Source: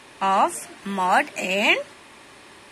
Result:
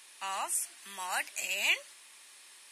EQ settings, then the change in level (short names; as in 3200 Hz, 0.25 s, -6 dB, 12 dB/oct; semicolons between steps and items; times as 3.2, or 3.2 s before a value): HPF 120 Hz; differentiator; 0.0 dB